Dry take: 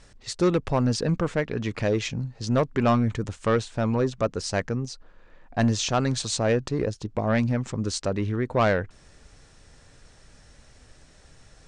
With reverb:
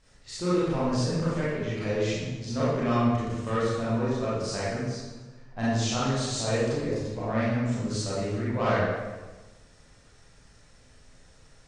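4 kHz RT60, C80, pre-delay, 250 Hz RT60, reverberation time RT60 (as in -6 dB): 1.0 s, 0.0 dB, 26 ms, 1.4 s, 1.3 s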